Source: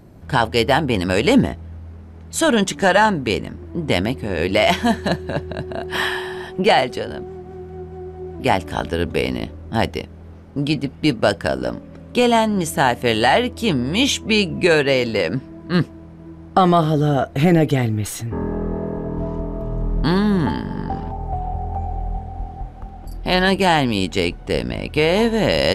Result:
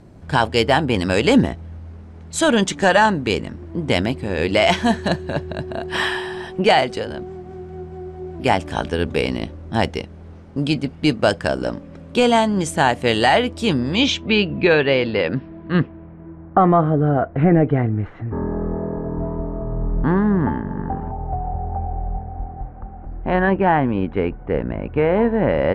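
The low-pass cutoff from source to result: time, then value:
low-pass 24 dB/octave
13.69 s 9.6 kHz
14.36 s 3.8 kHz
15.42 s 3.8 kHz
16.50 s 1.8 kHz

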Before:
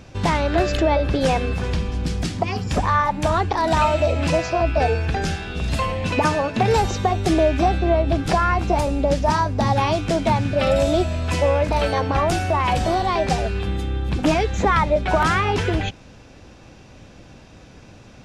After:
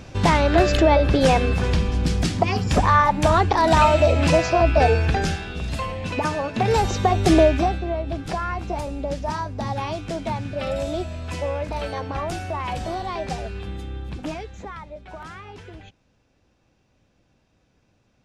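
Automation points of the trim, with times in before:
5.07 s +2.5 dB
5.73 s -5 dB
6.30 s -5 dB
7.39 s +3.5 dB
7.87 s -8 dB
14.01 s -8 dB
14.81 s -20 dB

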